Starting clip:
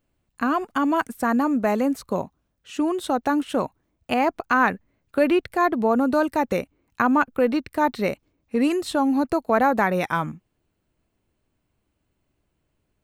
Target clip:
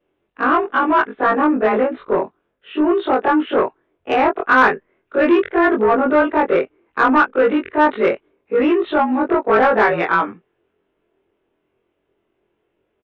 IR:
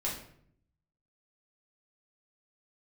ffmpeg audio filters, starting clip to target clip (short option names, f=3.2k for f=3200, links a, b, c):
-filter_complex "[0:a]afftfilt=real='re':imag='-im':win_size=2048:overlap=0.75,aresample=8000,aresample=44100,equalizer=f=400:t=o:w=0.62:g=14.5,asplit=2[a][b];[b]highpass=f=720:p=1,volume=17dB,asoftclip=type=tanh:threshold=-5.5dB[c];[a][c]amix=inputs=2:normalize=0,lowpass=f=2.6k:p=1,volume=-6dB,adynamicequalizer=threshold=0.0251:dfrequency=1500:dqfactor=1.2:tfrequency=1500:tqfactor=1.2:attack=5:release=100:ratio=0.375:range=3:mode=boostabove:tftype=bell"